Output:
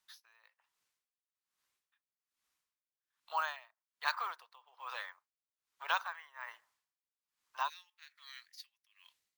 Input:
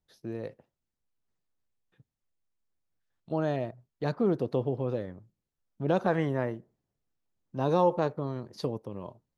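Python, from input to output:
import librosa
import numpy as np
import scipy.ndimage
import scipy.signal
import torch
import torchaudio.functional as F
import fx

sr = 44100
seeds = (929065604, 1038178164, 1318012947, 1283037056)

y = fx.ellip_highpass(x, sr, hz=fx.steps((0.0, 1000.0), (7.68, 1900.0)), order=4, stop_db=80)
y = np.repeat(y[::2], 2)[:len(y)]
y = fx.quant_float(y, sr, bits=4)
y = y * 10.0 ** (-24 * (0.5 - 0.5 * np.cos(2.0 * np.pi * 1.2 * np.arange(len(y)) / sr)) / 20.0)
y = y * librosa.db_to_amplitude(11.5)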